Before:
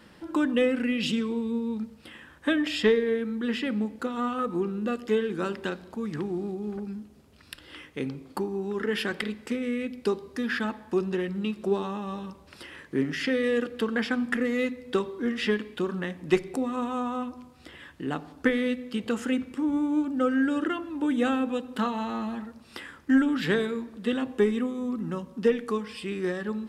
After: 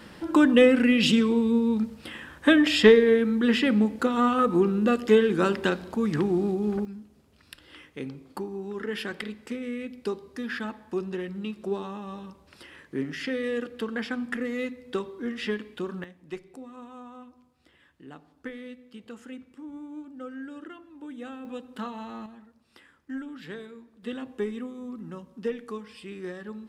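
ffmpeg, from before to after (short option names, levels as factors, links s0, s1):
-af "asetnsamples=n=441:p=0,asendcmd='6.85 volume volume -4dB;16.04 volume volume -14.5dB;21.45 volume volume -7.5dB;22.26 volume volume -14.5dB;24.03 volume volume -7.5dB',volume=2.11"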